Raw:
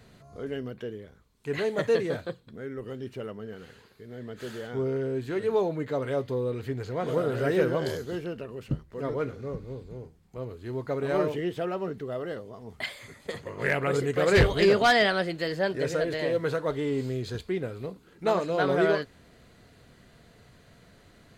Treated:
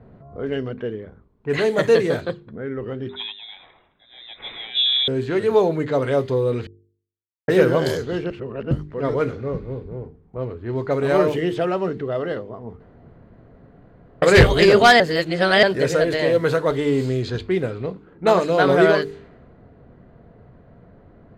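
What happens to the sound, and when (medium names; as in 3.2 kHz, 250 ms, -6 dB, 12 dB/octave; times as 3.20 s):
3.09–5.08 s: frequency inversion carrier 3.8 kHz
6.67–7.48 s: mute
8.30–8.71 s: reverse
12.80–14.22 s: room tone
15.00–15.63 s: reverse
whole clip: level-controlled noise filter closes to 760 Hz, open at -25 dBFS; de-hum 49.86 Hz, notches 9; trim +9 dB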